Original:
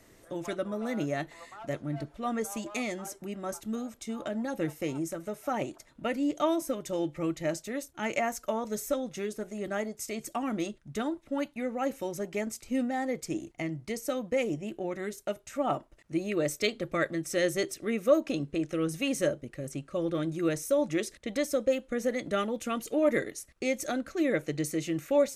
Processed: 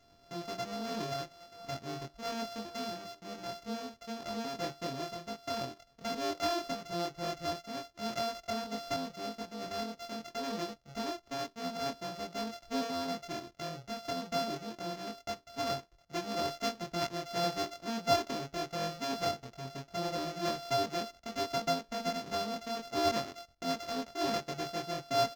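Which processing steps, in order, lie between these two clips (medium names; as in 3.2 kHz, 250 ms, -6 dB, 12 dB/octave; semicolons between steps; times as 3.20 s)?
sorted samples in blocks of 64 samples; resonant high shelf 7.5 kHz -6.5 dB, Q 3; doubling 23 ms -2 dB; trim -8 dB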